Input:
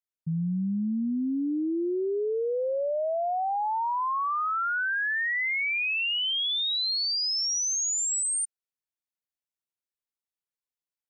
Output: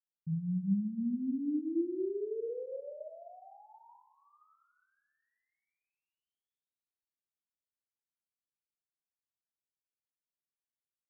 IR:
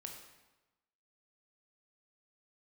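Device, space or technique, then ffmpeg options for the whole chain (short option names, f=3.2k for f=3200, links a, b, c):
next room: -filter_complex "[0:a]lowpass=f=420:w=0.5412,lowpass=f=420:w=1.3066[a];[1:a]atrim=start_sample=2205[b];[a][b]afir=irnorm=-1:irlink=0,asplit=3[c][d][e];[c]afade=t=out:st=3.86:d=0.02[f];[d]aecho=1:1:2.4:0.69,afade=t=in:st=3.86:d=0.02,afade=t=out:st=4.54:d=0.02[g];[e]afade=t=in:st=4.54:d=0.02[h];[f][g][h]amix=inputs=3:normalize=0,volume=-1.5dB"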